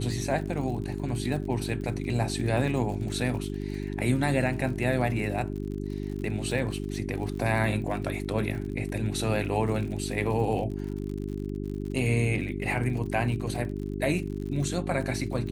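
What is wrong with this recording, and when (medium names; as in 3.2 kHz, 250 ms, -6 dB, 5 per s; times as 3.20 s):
crackle 58 per s -36 dBFS
hum 50 Hz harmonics 8 -33 dBFS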